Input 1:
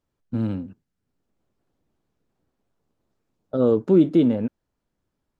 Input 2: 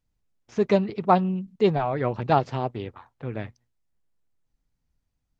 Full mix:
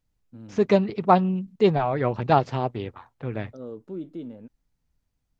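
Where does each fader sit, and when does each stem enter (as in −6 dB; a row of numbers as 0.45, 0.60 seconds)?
−19.0, +1.5 decibels; 0.00, 0.00 seconds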